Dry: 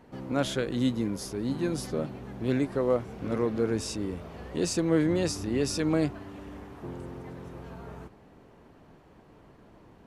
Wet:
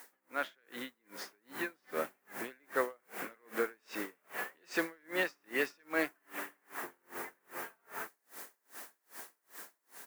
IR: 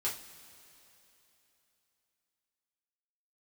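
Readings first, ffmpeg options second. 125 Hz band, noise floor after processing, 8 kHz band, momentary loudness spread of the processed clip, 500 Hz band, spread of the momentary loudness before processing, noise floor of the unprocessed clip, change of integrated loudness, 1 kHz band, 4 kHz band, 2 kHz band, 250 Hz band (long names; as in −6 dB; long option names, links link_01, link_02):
−28.5 dB, −79 dBFS, −11.0 dB, 15 LU, −9.5 dB, 17 LU, −56 dBFS, −10.5 dB, −2.0 dB, −9.0 dB, +4.5 dB, −16.0 dB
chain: -filter_complex "[0:a]acompressor=threshold=-37dB:ratio=1.5,lowpass=frequency=1800:width_type=q:width=2.4,asplit=2[link_01][link_02];[link_02]aecho=0:1:72|144|216|288:0.0891|0.0499|0.0279|0.0157[link_03];[link_01][link_03]amix=inputs=2:normalize=0,acrusher=bits=10:mix=0:aa=0.000001,dynaudnorm=framelen=540:gausssize=5:maxgain=7.5dB,highpass=280,aderivative,asoftclip=type=tanh:threshold=-32dB,lowshelf=frequency=440:gain=6,aeval=exprs='val(0)*pow(10,-38*(0.5-0.5*cos(2*PI*2.5*n/s))/20)':channel_layout=same,volume=15dB"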